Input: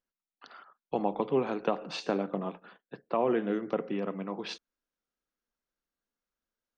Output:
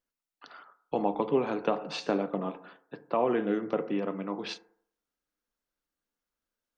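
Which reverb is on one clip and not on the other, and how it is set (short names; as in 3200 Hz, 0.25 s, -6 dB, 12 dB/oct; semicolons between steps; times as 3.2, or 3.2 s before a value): FDN reverb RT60 0.62 s, low-frequency decay 0.9×, high-frequency decay 0.3×, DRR 10.5 dB; gain +1 dB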